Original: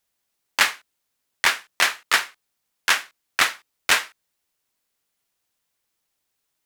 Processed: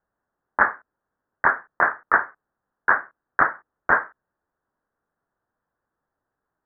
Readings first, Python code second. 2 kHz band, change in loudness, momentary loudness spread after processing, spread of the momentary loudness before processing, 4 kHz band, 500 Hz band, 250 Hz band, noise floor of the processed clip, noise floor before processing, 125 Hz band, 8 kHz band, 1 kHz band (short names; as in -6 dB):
+0.5 dB, -0.5 dB, 11 LU, 10 LU, under -40 dB, +5.5 dB, +5.5 dB, -84 dBFS, -77 dBFS, n/a, under -40 dB, +5.5 dB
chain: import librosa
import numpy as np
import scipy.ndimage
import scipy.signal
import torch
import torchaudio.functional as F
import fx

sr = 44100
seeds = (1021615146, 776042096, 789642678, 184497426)

y = scipy.signal.sosfilt(scipy.signal.butter(12, 1700.0, 'lowpass', fs=sr, output='sos'), x)
y = y * librosa.db_to_amplitude(5.5)